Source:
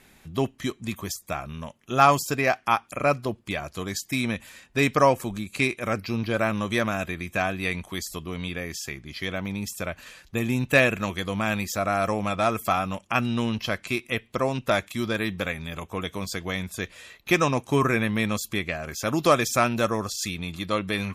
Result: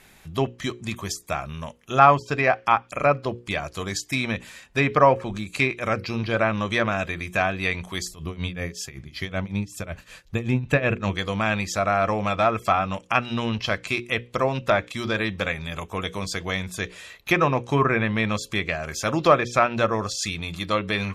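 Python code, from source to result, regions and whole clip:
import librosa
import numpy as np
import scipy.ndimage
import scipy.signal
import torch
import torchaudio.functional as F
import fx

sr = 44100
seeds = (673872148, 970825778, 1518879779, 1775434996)

y = fx.chain(x, sr, fx.low_shelf(hz=290.0, db=8.0),
    fx.tremolo(hz=5.3, depth=0.88), at=(8.07, 11.15))
y = fx.hum_notches(y, sr, base_hz=60, count=9)
y = fx.env_lowpass_down(y, sr, base_hz=2200.0, full_db=-18.0)
y = fx.peak_eq(y, sr, hz=260.0, db=-4.5, octaves=0.89)
y = y * 10.0 ** (3.5 / 20.0)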